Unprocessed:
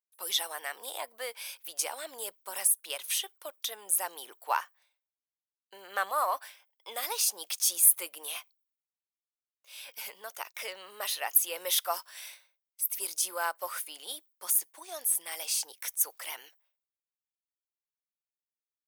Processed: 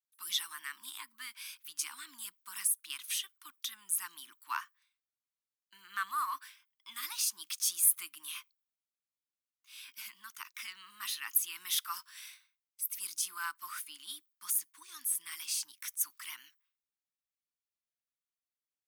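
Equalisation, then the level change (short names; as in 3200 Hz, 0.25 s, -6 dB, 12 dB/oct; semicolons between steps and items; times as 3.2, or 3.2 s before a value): elliptic band-stop 280–1100 Hz, stop band 60 dB; high shelf 10000 Hz -4 dB; -3.0 dB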